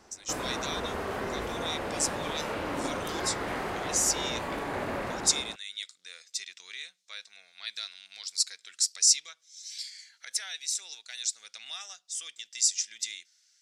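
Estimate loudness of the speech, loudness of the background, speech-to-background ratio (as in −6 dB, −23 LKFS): −31.0 LKFS, −34.0 LKFS, 3.0 dB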